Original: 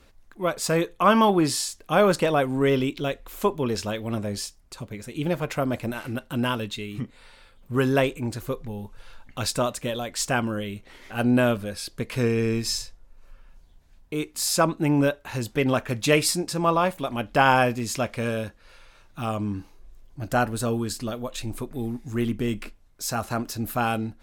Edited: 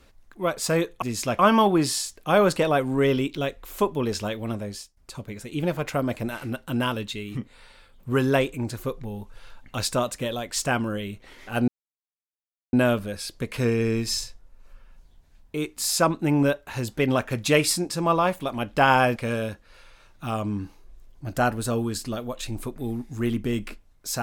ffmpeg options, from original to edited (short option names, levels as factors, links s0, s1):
-filter_complex "[0:a]asplit=6[s0][s1][s2][s3][s4][s5];[s0]atrim=end=1.022[s6];[s1]atrim=start=17.738:end=18.112[s7];[s2]atrim=start=1.018:end=4.6,asetpts=PTS-STARTPTS,afade=t=out:st=2.842:d=0.74:c=qsin:silence=0.149624[s8];[s3]atrim=start=4.6:end=11.31,asetpts=PTS-STARTPTS,afade=t=in:d=0.004:c=hsin:silence=0.149624,afade=t=out:st=6.706:d=0.004:c=hsin,apad=pad_dur=1.05[s9];[s4]atrim=start=11.31:end=17.742,asetpts=PTS-STARTPTS,afade=t=in:d=0.004:c=hsin[s10];[s5]atrim=start=18.108[s11];[s6][s7]acrossfade=d=0.004:c1=hsin:c2=hsin[s12];[s8][s9][s10]concat=n=3:v=0:a=1[s13];[s12][s13]acrossfade=d=0.004:c1=hsin:c2=hsin[s14];[s14][s11]acrossfade=d=0.004:c1=hsin:c2=hsin"